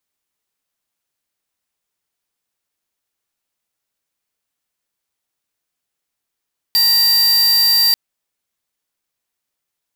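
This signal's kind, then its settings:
tone square 4,690 Hz −13 dBFS 1.19 s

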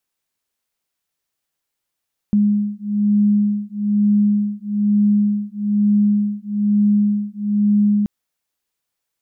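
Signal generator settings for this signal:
two tones that beat 206 Hz, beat 1.1 Hz, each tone −17 dBFS 5.73 s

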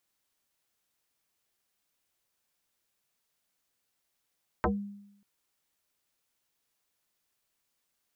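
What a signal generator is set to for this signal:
two-operator FM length 0.59 s, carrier 202 Hz, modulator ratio 1.35, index 6.2, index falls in 0.18 s exponential, decay 0.81 s, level −21.5 dB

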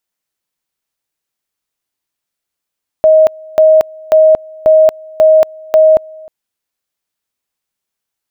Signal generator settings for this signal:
tone at two levels in turn 629 Hz −3 dBFS, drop 26 dB, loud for 0.23 s, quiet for 0.31 s, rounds 6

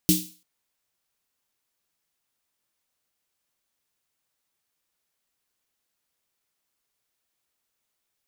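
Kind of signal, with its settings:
synth snare length 0.34 s, tones 180 Hz, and 310 Hz, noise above 3,100 Hz, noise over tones −2 dB, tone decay 0.31 s, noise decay 0.40 s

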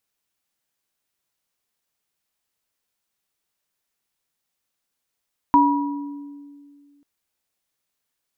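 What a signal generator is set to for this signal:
inharmonic partials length 1.49 s, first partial 286 Hz, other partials 967 Hz, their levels 5 dB, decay 2.22 s, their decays 0.97 s, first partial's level −15 dB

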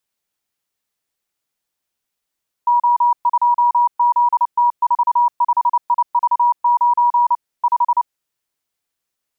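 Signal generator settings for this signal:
Morse code "O2ZT45IV9 5" 29 words per minute 962 Hz −10.5 dBFS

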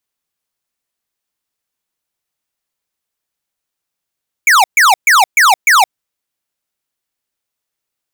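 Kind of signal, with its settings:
repeated falling chirps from 2,400 Hz, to 710 Hz, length 0.17 s square, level −7.5 dB, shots 5, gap 0.13 s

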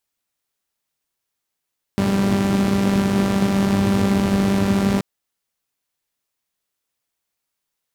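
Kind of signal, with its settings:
pulse-train model of a four-cylinder engine, steady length 3.03 s, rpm 5,900, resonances 110/200 Hz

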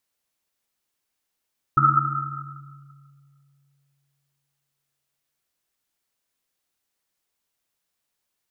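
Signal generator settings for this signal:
drum after Risset length 3.66 s, pitch 140 Hz, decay 2.92 s, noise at 1,300 Hz, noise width 130 Hz, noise 70%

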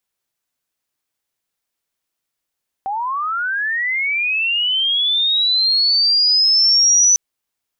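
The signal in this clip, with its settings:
glide linear 760 Hz → 6,000 Hz −19.5 dBFS → −9 dBFS 4.30 s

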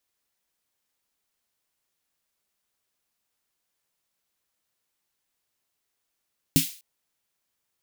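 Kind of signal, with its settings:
synth snare length 0.25 s, tones 160 Hz, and 270 Hz, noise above 2,400 Hz, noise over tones −4.5 dB, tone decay 0.14 s, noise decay 0.41 s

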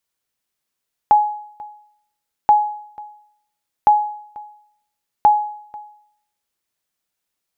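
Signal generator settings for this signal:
ping with an echo 839 Hz, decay 0.66 s, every 1.38 s, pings 4, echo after 0.49 s, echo −23 dB −5 dBFS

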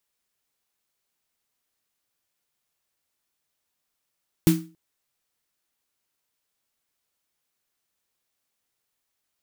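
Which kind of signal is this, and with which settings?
synth snare length 0.28 s, tones 170 Hz, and 320 Hz, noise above 840 Hz, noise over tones −11 dB, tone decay 0.35 s, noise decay 0.29 s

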